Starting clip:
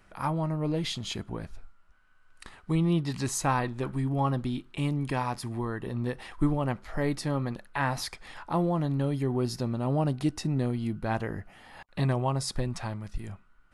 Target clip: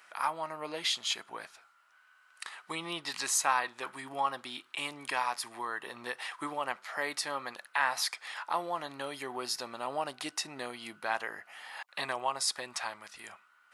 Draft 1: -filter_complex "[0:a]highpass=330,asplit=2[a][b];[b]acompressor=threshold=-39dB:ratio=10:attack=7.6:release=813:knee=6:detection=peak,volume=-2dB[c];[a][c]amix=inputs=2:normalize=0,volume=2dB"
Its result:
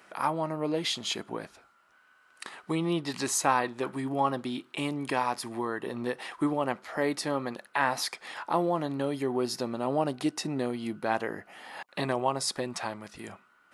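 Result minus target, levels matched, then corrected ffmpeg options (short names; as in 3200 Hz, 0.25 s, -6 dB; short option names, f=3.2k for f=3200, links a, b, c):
250 Hz band +11.5 dB
-filter_complex "[0:a]highpass=1k,asplit=2[a][b];[b]acompressor=threshold=-39dB:ratio=10:attack=7.6:release=813:knee=6:detection=peak,volume=-2dB[c];[a][c]amix=inputs=2:normalize=0,volume=2dB"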